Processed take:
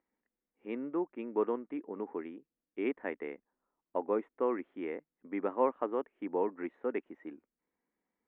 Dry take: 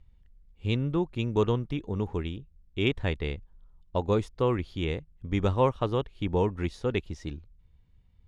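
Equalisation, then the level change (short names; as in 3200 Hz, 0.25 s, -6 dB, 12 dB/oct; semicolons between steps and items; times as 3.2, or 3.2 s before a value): elliptic band-pass 260–2000 Hz, stop band 40 dB; -4.0 dB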